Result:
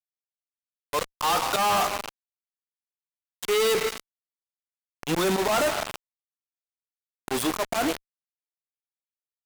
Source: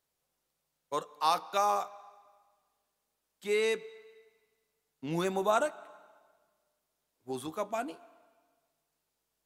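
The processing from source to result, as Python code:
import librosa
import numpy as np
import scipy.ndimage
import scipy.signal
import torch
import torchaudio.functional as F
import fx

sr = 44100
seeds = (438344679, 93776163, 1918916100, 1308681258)

y = fx.low_shelf(x, sr, hz=150.0, db=-10.5)
y = fx.power_curve(y, sr, exponent=1.4)
y = fx.auto_swell(y, sr, attack_ms=259.0)
y = fx.leveller(y, sr, passes=5)
y = fx.fuzz(y, sr, gain_db=58.0, gate_db=-60.0)
y = F.gain(torch.from_numpy(y), -7.5).numpy()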